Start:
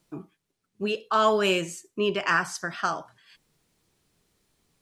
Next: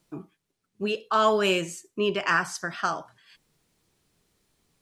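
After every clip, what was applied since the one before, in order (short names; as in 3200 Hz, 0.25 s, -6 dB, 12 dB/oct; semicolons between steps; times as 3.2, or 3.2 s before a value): nothing audible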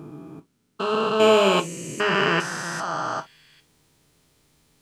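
stepped spectrum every 0.4 s; non-linear reverb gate 80 ms falling, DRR 6.5 dB; gain +8.5 dB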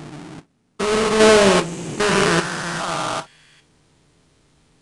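half-waves squared off; downsampling 22050 Hz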